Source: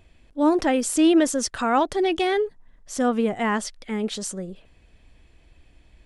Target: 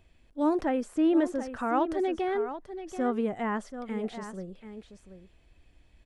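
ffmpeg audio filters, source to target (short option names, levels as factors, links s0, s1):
-filter_complex "[0:a]acrossover=split=2000[s0][s1];[s1]acompressor=threshold=0.00447:ratio=6[s2];[s0][s2]amix=inputs=2:normalize=0,aecho=1:1:734:0.282,volume=0.473"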